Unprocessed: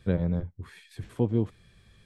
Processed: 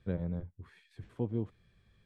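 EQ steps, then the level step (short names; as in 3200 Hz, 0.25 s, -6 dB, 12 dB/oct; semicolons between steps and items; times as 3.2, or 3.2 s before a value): LPF 2900 Hz 6 dB/oct; -8.5 dB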